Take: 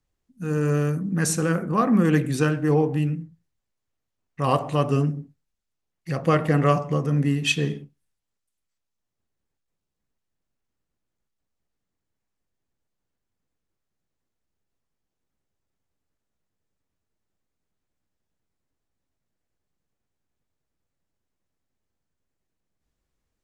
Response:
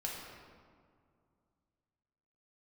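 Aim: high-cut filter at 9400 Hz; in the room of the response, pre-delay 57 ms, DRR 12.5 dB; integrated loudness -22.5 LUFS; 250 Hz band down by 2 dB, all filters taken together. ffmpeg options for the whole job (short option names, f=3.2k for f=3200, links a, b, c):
-filter_complex "[0:a]lowpass=9.4k,equalizer=f=250:t=o:g=-3,asplit=2[a][b];[1:a]atrim=start_sample=2205,adelay=57[c];[b][c]afir=irnorm=-1:irlink=0,volume=-14dB[d];[a][d]amix=inputs=2:normalize=0,volume=1.5dB"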